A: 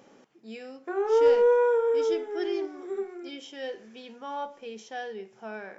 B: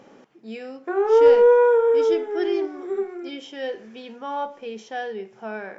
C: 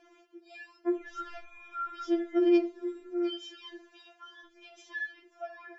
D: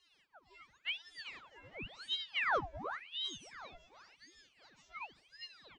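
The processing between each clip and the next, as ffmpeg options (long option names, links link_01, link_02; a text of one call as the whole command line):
ffmpeg -i in.wav -af "highshelf=frequency=5500:gain=-10.5,volume=6.5dB" out.wav
ffmpeg -i in.wav -af "alimiter=limit=-15dB:level=0:latency=1:release=70,afftfilt=real='re*4*eq(mod(b,16),0)':imag='im*4*eq(mod(b,16),0)':win_size=2048:overlap=0.75,volume=-4dB" out.wav
ffmpeg -i in.wav -filter_complex "[0:a]asplit=4[link_01][link_02][link_03][link_04];[link_02]adelay=382,afreqshift=-72,volume=-11dB[link_05];[link_03]adelay=764,afreqshift=-144,volume=-21.2dB[link_06];[link_04]adelay=1146,afreqshift=-216,volume=-31.3dB[link_07];[link_01][link_05][link_06][link_07]amix=inputs=4:normalize=0,aeval=exprs='val(0)*sin(2*PI*1900*n/s+1900*0.85/0.92*sin(2*PI*0.92*n/s))':channel_layout=same,volume=-7.5dB" out.wav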